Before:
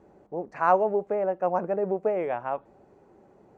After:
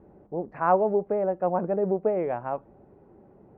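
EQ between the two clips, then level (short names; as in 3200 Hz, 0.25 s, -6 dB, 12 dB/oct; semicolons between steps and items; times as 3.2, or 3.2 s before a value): air absorption 490 m; low shelf 320 Hz +7.5 dB; 0.0 dB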